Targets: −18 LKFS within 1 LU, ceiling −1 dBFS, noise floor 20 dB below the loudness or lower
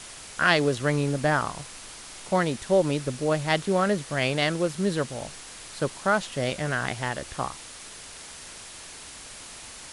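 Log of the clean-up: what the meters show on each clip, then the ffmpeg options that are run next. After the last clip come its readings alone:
background noise floor −43 dBFS; target noise floor −46 dBFS; integrated loudness −26.0 LKFS; sample peak −5.0 dBFS; target loudness −18.0 LKFS
→ -af "afftdn=noise_reduction=6:noise_floor=-43"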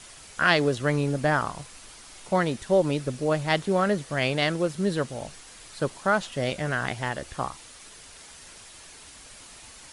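background noise floor −48 dBFS; integrated loudness −26.0 LKFS; sample peak −5.5 dBFS; target loudness −18.0 LKFS
→ -af "volume=8dB,alimiter=limit=-1dB:level=0:latency=1"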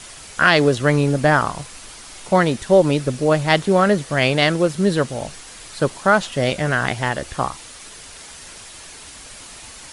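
integrated loudness −18.0 LKFS; sample peak −1.0 dBFS; background noise floor −40 dBFS

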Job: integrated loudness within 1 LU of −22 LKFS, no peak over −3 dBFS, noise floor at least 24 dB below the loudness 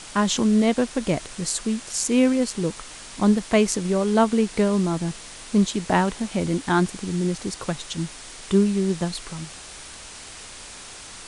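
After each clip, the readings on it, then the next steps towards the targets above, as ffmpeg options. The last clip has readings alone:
background noise floor −41 dBFS; target noise floor −47 dBFS; integrated loudness −23.0 LKFS; sample peak −5.0 dBFS; target loudness −22.0 LKFS
→ -af "afftdn=noise_reduction=6:noise_floor=-41"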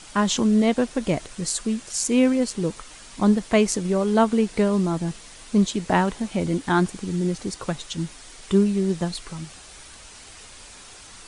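background noise floor −45 dBFS; target noise floor −47 dBFS
→ -af "afftdn=noise_reduction=6:noise_floor=-45"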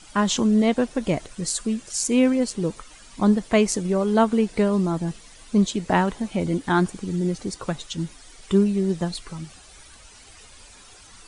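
background noise floor −48 dBFS; integrated loudness −23.0 LKFS; sample peak −5.5 dBFS; target loudness −22.0 LKFS
→ -af "volume=1dB"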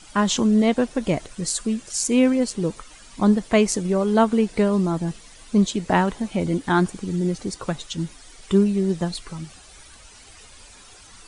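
integrated loudness −22.0 LKFS; sample peak −4.5 dBFS; background noise floor −47 dBFS

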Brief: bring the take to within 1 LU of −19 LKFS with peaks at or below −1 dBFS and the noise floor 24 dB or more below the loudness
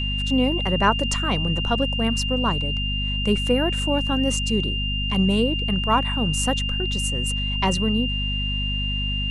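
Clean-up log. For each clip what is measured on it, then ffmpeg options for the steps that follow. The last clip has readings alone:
mains hum 50 Hz; hum harmonics up to 250 Hz; level of the hum −24 dBFS; interfering tone 2,800 Hz; level of the tone −26 dBFS; integrated loudness −22.0 LKFS; sample peak −5.0 dBFS; target loudness −19.0 LKFS
→ -af "bandreject=frequency=50:width_type=h:width=6,bandreject=frequency=100:width_type=h:width=6,bandreject=frequency=150:width_type=h:width=6,bandreject=frequency=200:width_type=h:width=6,bandreject=frequency=250:width_type=h:width=6"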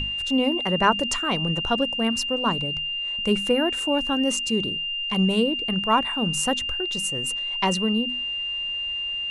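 mains hum none found; interfering tone 2,800 Hz; level of the tone −26 dBFS
→ -af "bandreject=frequency=2800:width=30"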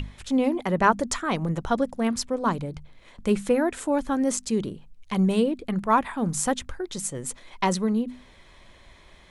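interfering tone none found; integrated loudness −25.5 LKFS; sample peak −6.0 dBFS; target loudness −19.0 LKFS
→ -af "volume=6.5dB,alimiter=limit=-1dB:level=0:latency=1"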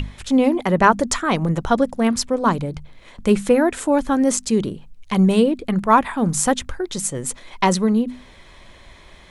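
integrated loudness −19.5 LKFS; sample peak −1.0 dBFS; background noise floor −46 dBFS

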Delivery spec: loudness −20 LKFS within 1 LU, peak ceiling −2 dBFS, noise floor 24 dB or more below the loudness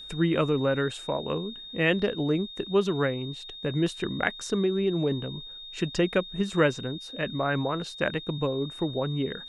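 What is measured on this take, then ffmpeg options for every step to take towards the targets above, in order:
interfering tone 3,700 Hz; level of the tone −40 dBFS; integrated loudness −28.0 LKFS; sample peak −7.0 dBFS; target loudness −20.0 LKFS
→ -af "bandreject=frequency=3700:width=30"
-af "volume=8dB,alimiter=limit=-2dB:level=0:latency=1"

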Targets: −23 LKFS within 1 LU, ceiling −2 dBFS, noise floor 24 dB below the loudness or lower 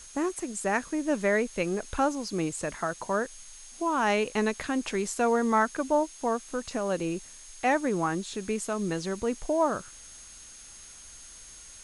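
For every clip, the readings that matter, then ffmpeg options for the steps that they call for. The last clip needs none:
interfering tone 6,500 Hz; level of the tone −49 dBFS; background noise floor −48 dBFS; target noise floor −53 dBFS; integrated loudness −29.0 LKFS; sample peak −12.5 dBFS; target loudness −23.0 LKFS
→ -af "bandreject=frequency=6500:width=30"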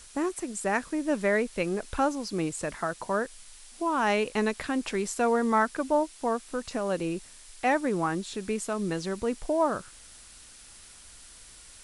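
interfering tone none found; background noise floor −51 dBFS; target noise floor −53 dBFS
→ -af "afftdn=noise_reduction=6:noise_floor=-51"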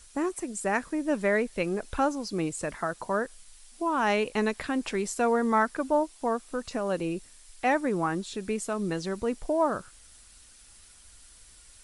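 background noise floor −54 dBFS; integrated loudness −29.0 LKFS; sample peak −13.0 dBFS; target loudness −23.0 LKFS
→ -af "volume=6dB"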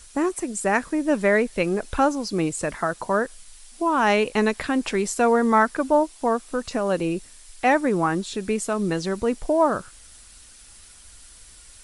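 integrated loudness −23.0 LKFS; sample peak −7.0 dBFS; background noise floor −48 dBFS

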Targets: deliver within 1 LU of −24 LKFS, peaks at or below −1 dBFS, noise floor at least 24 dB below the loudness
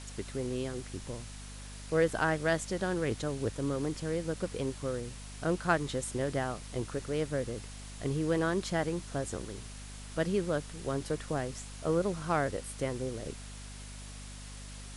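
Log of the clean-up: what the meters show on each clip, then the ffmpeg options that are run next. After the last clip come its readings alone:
mains hum 50 Hz; hum harmonics up to 250 Hz; level of the hum −44 dBFS; background noise floor −45 dBFS; target noise floor −58 dBFS; integrated loudness −34.0 LKFS; sample peak −12.5 dBFS; target loudness −24.0 LKFS
→ -af "bandreject=frequency=50:width_type=h:width=6,bandreject=frequency=100:width_type=h:width=6,bandreject=frequency=150:width_type=h:width=6,bandreject=frequency=200:width_type=h:width=6,bandreject=frequency=250:width_type=h:width=6"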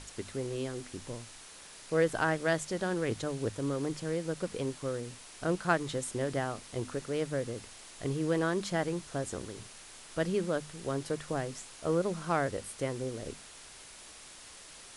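mains hum none found; background noise floor −51 dBFS; target noise floor −58 dBFS
→ -af "afftdn=noise_reduction=7:noise_floor=-51"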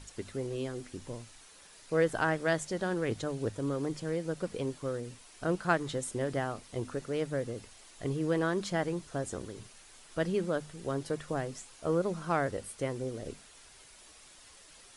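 background noise floor −56 dBFS; target noise floor −58 dBFS
→ -af "afftdn=noise_reduction=6:noise_floor=-56"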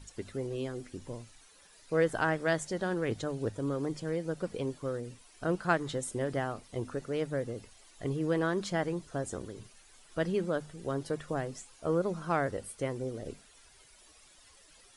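background noise floor −60 dBFS; integrated loudness −34.0 LKFS; sample peak −12.5 dBFS; target loudness −24.0 LKFS
→ -af "volume=10dB"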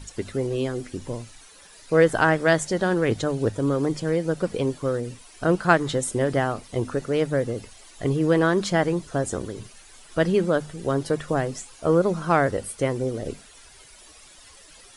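integrated loudness −24.0 LKFS; sample peak −2.5 dBFS; background noise floor −50 dBFS

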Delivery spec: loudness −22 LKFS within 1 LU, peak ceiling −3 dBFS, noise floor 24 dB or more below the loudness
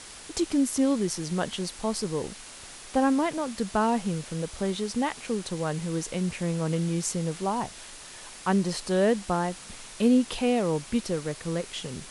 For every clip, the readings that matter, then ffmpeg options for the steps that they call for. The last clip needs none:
background noise floor −45 dBFS; target noise floor −52 dBFS; integrated loudness −28.0 LKFS; sample peak −11.5 dBFS; target loudness −22.0 LKFS
→ -af "afftdn=noise_reduction=7:noise_floor=-45"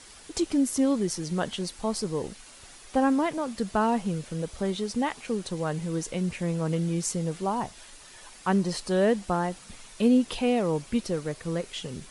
background noise floor −49 dBFS; target noise floor −52 dBFS
→ -af "afftdn=noise_reduction=6:noise_floor=-49"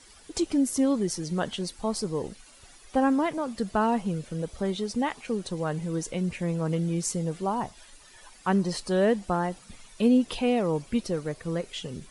background noise floor −53 dBFS; integrated loudness −28.0 LKFS; sample peak −11.5 dBFS; target loudness −22.0 LKFS
→ -af "volume=6dB"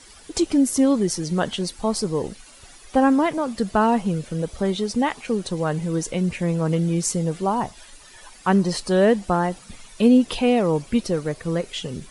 integrated loudness −22.0 LKFS; sample peak −5.5 dBFS; background noise floor −47 dBFS

